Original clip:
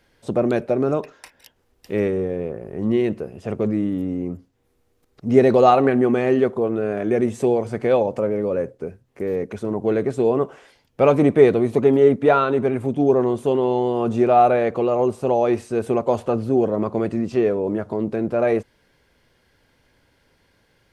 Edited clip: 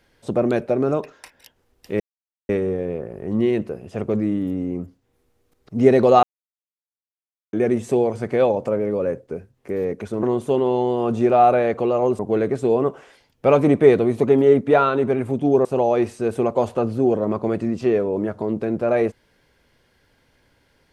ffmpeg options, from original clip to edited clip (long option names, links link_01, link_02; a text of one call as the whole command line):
ffmpeg -i in.wav -filter_complex "[0:a]asplit=7[link_01][link_02][link_03][link_04][link_05][link_06][link_07];[link_01]atrim=end=2,asetpts=PTS-STARTPTS,afade=type=out:start_time=1.996:duration=0.004:curve=hsin,apad=pad_dur=0.49[link_08];[link_02]atrim=start=2:end=5.74,asetpts=PTS-STARTPTS,afade=type=in:duration=0.004:curve=hsin,afade=type=out:start_time=3.736:duration=0.004:curve=hsin[link_09];[link_03]atrim=start=5.74:end=7.04,asetpts=PTS-STARTPTS,volume=0[link_10];[link_04]atrim=start=7.04:end=9.742,asetpts=PTS-STARTPTS,afade=type=in:duration=0.004:curve=hsin[link_11];[link_05]atrim=start=13.198:end=15.162[link_12];[link_06]atrim=start=9.738:end=13.202[link_13];[link_07]atrim=start=15.158[link_14];[link_08][link_09][link_10][link_11]concat=n=4:v=0:a=1[link_15];[link_15][link_12]acrossfade=duration=0.004:curve1=hsin:curve2=hsin[link_16];[link_16][link_13]acrossfade=duration=0.004:curve1=hsin:curve2=hsin[link_17];[link_17][link_14]acrossfade=duration=0.004:curve1=hsin:curve2=hsin" out.wav